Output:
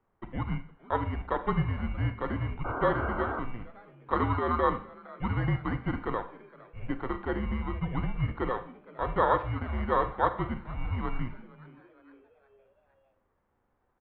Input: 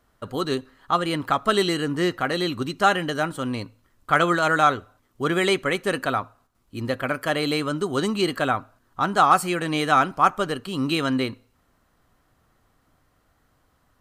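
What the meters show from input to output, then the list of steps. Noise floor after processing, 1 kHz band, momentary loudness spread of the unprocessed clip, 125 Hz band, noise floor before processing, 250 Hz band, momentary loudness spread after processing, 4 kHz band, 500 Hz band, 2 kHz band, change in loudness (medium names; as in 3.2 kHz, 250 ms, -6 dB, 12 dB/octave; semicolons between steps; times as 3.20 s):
-74 dBFS, -8.5 dB, 11 LU, 0.0 dB, -66 dBFS, -8.5 dB, 12 LU, -21.5 dB, -8.0 dB, -12.0 dB, -8.0 dB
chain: bit-reversed sample order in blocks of 16 samples; mistuned SSB -240 Hz 160–2600 Hz; frequency-shifting echo 462 ms, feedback 52%, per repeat +130 Hz, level -22 dB; painted sound noise, 2.64–3.40 s, 220–1600 Hz -29 dBFS; Schroeder reverb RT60 0.48 s, combs from 32 ms, DRR 10.5 dB; trim -5.5 dB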